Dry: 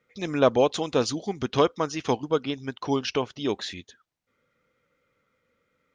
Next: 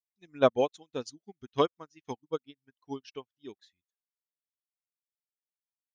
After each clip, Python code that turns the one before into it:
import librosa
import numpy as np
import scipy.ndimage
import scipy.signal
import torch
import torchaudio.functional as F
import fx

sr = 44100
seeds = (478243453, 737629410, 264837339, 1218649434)

y = fx.bin_expand(x, sr, power=1.5)
y = fx.high_shelf(y, sr, hz=6500.0, db=7.5)
y = fx.upward_expand(y, sr, threshold_db=-42.0, expansion=2.5)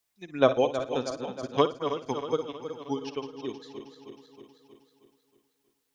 y = fx.reverse_delay_fb(x, sr, ms=158, feedback_pct=69, wet_db=-10.5)
y = fx.room_flutter(y, sr, wall_m=9.6, rt60_s=0.25)
y = fx.band_squash(y, sr, depth_pct=40)
y = y * 10.0 ** (5.0 / 20.0)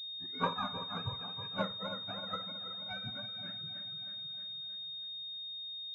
y = fx.octave_mirror(x, sr, pivot_hz=790.0)
y = fx.pwm(y, sr, carrier_hz=3700.0)
y = y * 10.0 ** (-7.5 / 20.0)